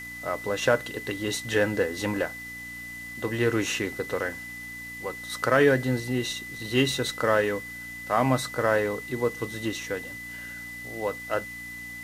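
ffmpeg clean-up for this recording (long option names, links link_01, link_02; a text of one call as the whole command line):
ffmpeg -i in.wav -af "bandreject=frequency=59.2:width_type=h:width=4,bandreject=frequency=118.4:width_type=h:width=4,bandreject=frequency=177.6:width_type=h:width=4,bandreject=frequency=236.8:width_type=h:width=4,bandreject=frequency=296:width_type=h:width=4,bandreject=frequency=2000:width=30,afwtdn=0.0035" out.wav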